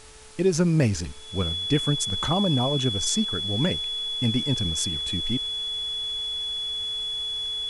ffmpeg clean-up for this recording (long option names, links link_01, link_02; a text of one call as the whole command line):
ffmpeg -i in.wav -af "bandreject=frequency=434.9:width_type=h:width=4,bandreject=frequency=869.8:width_type=h:width=4,bandreject=frequency=1304.7:width_type=h:width=4,bandreject=frequency=1739.6:width_type=h:width=4,bandreject=frequency=3400:width=30,afwtdn=0.0045" out.wav